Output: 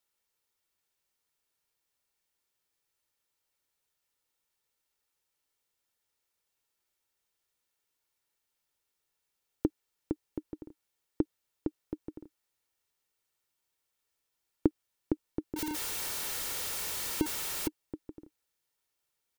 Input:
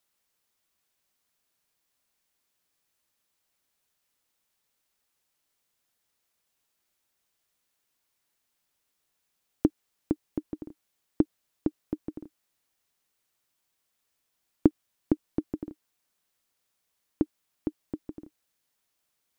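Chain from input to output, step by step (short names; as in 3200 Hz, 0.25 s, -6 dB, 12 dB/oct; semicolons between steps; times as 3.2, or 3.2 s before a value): 15.56–17.68 zero-crossing step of -25 dBFS; comb 2.2 ms, depth 32%; gain -5 dB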